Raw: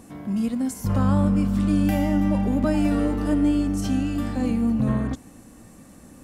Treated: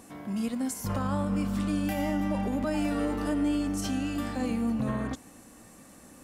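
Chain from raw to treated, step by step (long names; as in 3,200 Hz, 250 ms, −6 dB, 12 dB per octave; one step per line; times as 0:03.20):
low-shelf EQ 310 Hz −10 dB
brickwall limiter −20.5 dBFS, peak gain reduction 5.5 dB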